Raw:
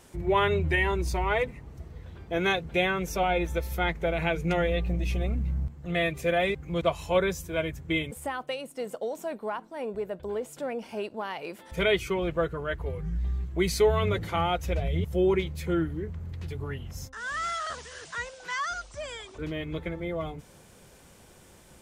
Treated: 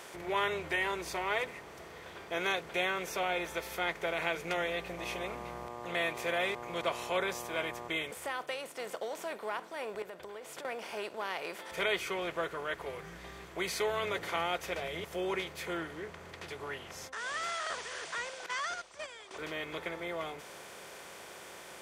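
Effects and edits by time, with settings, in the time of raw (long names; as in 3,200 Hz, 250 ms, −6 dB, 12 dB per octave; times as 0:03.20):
0:04.97–0:07.87: hum with harmonics 120 Hz, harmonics 10, −40 dBFS
0:10.02–0:10.65: downward compressor, threshold −42 dBFS
0:15.77–0:17.19: low-pass filter 10,000 Hz
0:18.46–0:19.31: noise gate −36 dBFS, range −15 dB
whole clip: compressor on every frequency bin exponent 0.6; high-pass filter 720 Hz 6 dB per octave; level −7 dB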